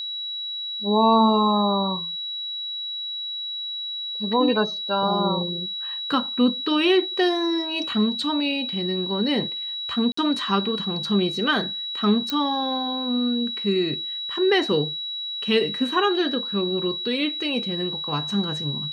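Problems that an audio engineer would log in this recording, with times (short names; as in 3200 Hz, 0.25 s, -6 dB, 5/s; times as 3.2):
tone 3900 Hz -28 dBFS
10.12–10.17 gap 54 ms
12.3 pop -11 dBFS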